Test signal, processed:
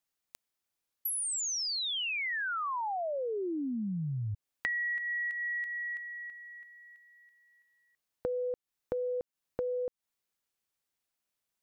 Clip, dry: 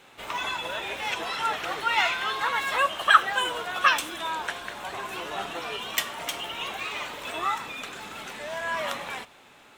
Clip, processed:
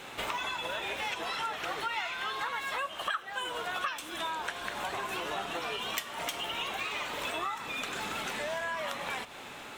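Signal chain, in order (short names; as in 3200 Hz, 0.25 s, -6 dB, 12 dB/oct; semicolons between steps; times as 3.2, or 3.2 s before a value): compressor 8:1, threshold -41 dBFS; gain +8.5 dB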